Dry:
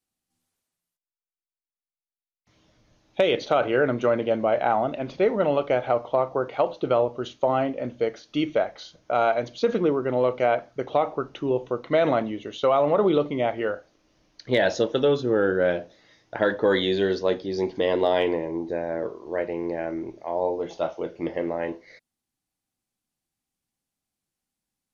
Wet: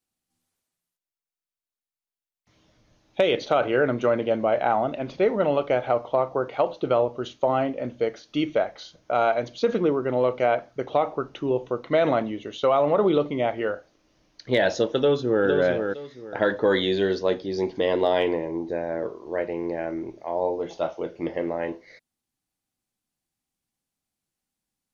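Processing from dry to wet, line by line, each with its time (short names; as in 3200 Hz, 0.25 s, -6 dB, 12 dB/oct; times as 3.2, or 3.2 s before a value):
14.98–15.47 echo throw 0.46 s, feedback 25%, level -5.5 dB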